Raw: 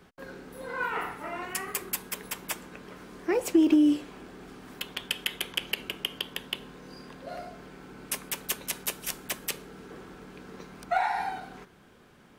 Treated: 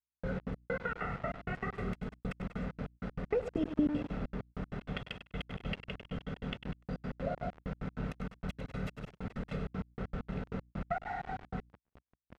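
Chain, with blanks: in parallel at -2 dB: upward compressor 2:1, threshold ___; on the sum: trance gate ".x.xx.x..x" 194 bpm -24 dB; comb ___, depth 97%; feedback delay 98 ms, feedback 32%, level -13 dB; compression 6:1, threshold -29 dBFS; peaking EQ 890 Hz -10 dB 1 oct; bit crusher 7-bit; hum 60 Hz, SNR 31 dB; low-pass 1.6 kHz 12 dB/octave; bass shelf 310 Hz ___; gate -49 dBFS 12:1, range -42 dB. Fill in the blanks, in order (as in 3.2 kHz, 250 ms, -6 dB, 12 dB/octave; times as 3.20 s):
-44 dBFS, 1.5 ms, +8.5 dB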